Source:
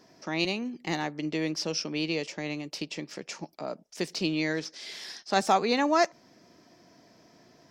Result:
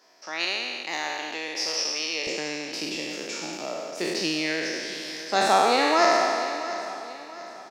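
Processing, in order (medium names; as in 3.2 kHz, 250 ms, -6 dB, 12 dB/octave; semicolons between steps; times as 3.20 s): spectral sustain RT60 2.19 s; high-pass 640 Hz 12 dB/octave, from 2.27 s 270 Hz; feedback delay 683 ms, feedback 42%, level -14 dB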